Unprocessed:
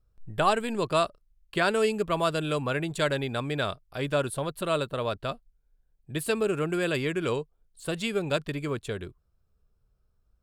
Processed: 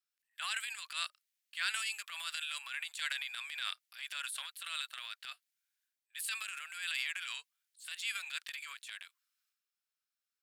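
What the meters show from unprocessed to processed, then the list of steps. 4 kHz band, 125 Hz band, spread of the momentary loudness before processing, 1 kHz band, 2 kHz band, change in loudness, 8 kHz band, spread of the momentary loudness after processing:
-2.5 dB, under -40 dB, 10 LU, -17.5 dB, -5.0 dB, -10.0 dB, -2.0 dB, 11 LU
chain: inverse Chebyshev high-pass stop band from 300 Hz, stop band 80 dB; transient shaper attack -8 dB, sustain +8 dB; gain -1 dB

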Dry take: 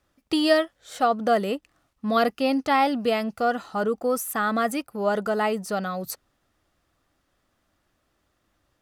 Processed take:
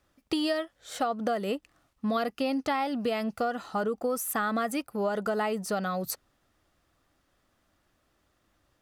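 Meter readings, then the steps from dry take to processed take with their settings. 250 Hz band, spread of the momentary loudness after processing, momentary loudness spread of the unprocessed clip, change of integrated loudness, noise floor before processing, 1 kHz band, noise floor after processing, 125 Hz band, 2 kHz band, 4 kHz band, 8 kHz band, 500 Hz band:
-4.5 dB, 5 LU, 10 LU, -6.0 dB, -73 dBFS, -7.0 dB, -73 dBFS, n/a, -6.5 dB, -6.0 dB, -1.5 dB, -6.0 dB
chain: compressor 10:1, threshold -25 dBFS, peak gain reduction 12 dB

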